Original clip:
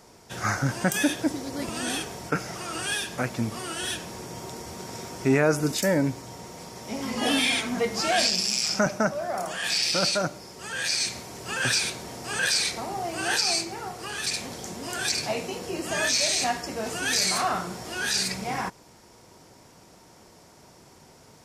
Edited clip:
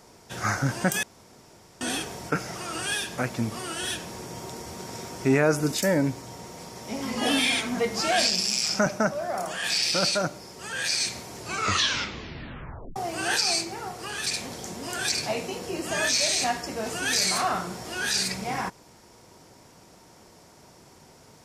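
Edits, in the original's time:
1.03–1.81 s: room tone
11.36 s: tape stop 1.60 s

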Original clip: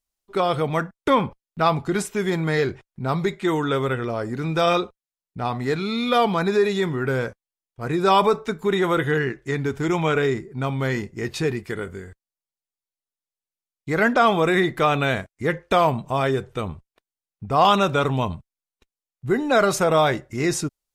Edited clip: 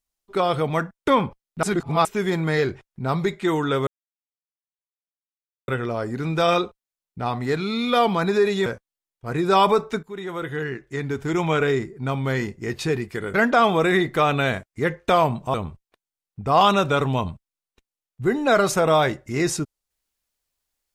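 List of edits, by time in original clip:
1.63–2.05 s: reverse
3.87 s: insert silence 1.81 s
6.85–7.21 s: delete
8.58–10.05 s: fade in, from -16 dB
11.89–13.97 s: delete
16.17–16.58 s: delete

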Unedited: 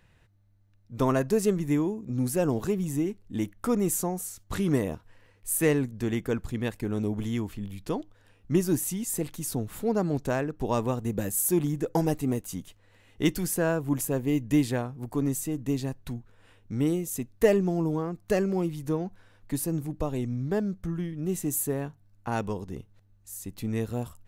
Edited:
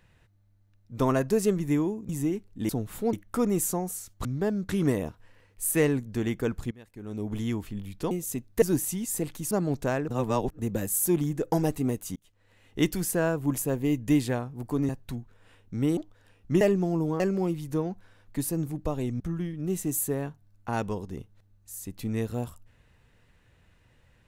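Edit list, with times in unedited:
2.09–2.83 s: delete
6.57–7.23 s: fade in quadratic, from -21 dB
7.97–8.61 s: swap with 16.95–17.46 s
9.50–9.94 s: move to 3.43 s
10.51–11.02 s: reverse
12.59–13.27 s: fade in equal-power
15.32–15.87 s: delete
18.05–18.35 s: delete
20.35–20.79 s: move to 4.55 s

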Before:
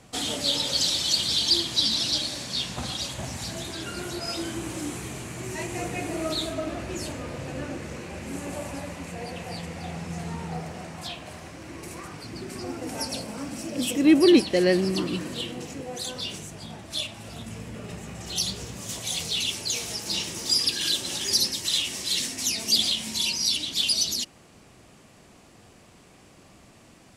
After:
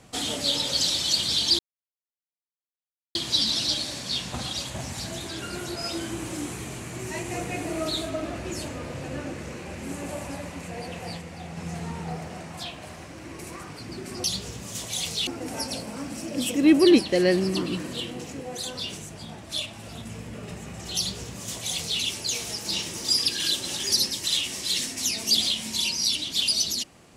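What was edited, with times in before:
1.59 s: insert silence 1.56 s
9.63–10.01 s: gain -3.5 dB
18.38–19.41 s: copy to 12.68 s

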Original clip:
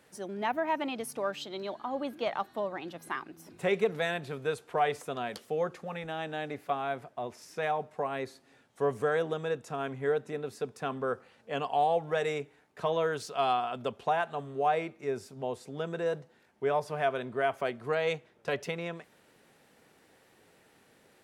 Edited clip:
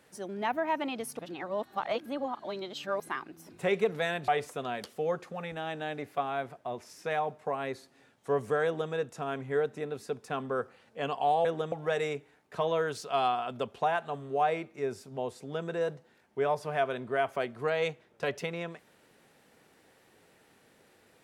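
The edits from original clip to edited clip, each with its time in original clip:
1.19–3.00 s: reverse
4.28–4.80 s: delete
9.17–9.44 s: copy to 11.97 s

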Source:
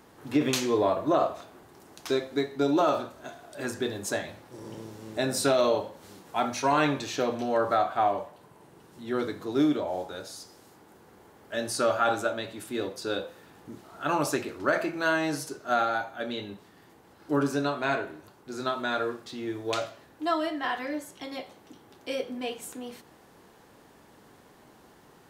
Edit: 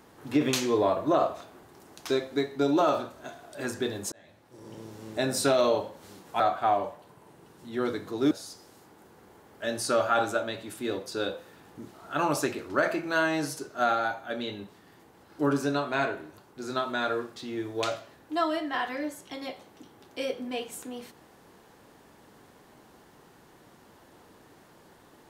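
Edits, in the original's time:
4.12–5.01 s: fade in
6.40–7.74 s: delete
9.65–10.21 s: delete

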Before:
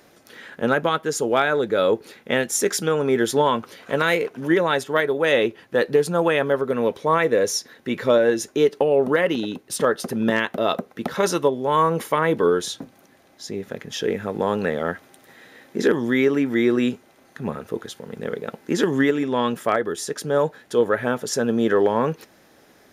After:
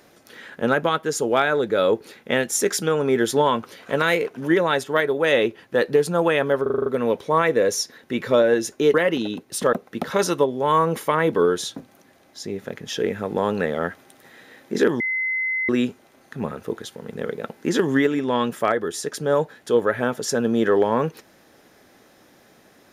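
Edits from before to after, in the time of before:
6.62 s: stutter 0.04 s, 7 plays
8.70–9.12 s: delete
9.91–10.77 s: delete
16.04–16.73 s: bleep 2.05 kHz -21 dBFS

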